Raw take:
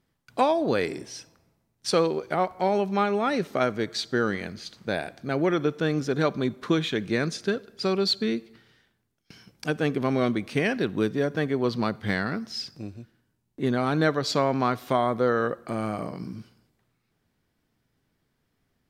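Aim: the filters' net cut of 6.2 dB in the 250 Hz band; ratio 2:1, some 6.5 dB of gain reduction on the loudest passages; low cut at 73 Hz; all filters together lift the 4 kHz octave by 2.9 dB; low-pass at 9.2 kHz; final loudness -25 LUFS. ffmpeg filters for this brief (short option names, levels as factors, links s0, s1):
-af "highpass=73,lowpass=9200,equalizer=f=250:t=o:g=-8.5,equalizer=f=4000:t=o:g=3.5,acompressor=threshold=0.0355:ratio=2,volume=2.24"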